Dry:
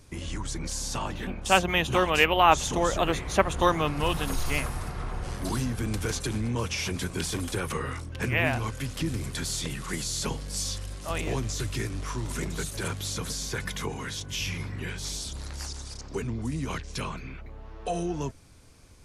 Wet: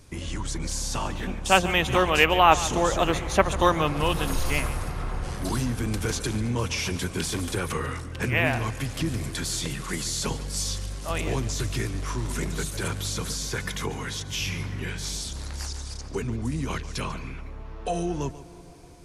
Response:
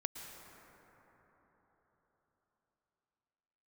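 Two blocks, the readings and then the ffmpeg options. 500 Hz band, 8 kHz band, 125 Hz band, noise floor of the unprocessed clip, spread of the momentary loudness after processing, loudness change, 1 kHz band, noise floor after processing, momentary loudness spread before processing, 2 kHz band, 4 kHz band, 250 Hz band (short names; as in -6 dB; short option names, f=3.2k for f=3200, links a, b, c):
+2.0 dB, +2.0 dB, +2.5 dB, -43 dBFS, 12 LU, +2.0 dB, +2.0 dB, -39 dBFS, 12 LU, +2.0 dB, +2.0 dB, +2.0 dB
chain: -filter_complex "[0:a]asplit=2[a][b];[1:a]atrim=start_sample=2205,adelay=143[c];[b][c]afir=irnorm=-1:irlink=0,volume=-13.5dB[d];[a][d]amix=inputs=2:normalize=0,volume=2dB"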